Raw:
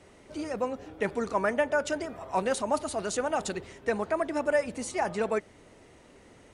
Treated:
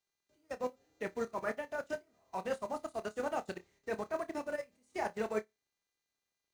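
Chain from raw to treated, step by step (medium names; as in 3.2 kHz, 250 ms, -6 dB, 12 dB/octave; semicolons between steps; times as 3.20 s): mains buzz 400 Hz, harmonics 19, -53 dBFS -1 dB/octave; level held to a coarse grid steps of 16 dB; bit crusher 10-bit; flutter echo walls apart 4.8 m, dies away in 0.28 s; upward expansion 2.5:1, over -46 dBFS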